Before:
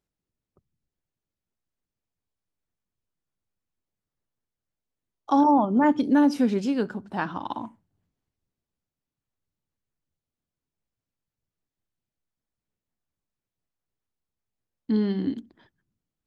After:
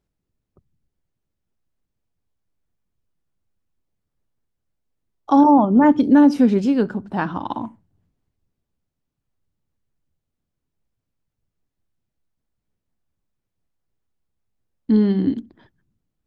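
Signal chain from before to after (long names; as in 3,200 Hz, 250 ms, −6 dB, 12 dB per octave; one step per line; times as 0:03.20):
spectral tilt −1.5 dB per octave
level +4.5 dB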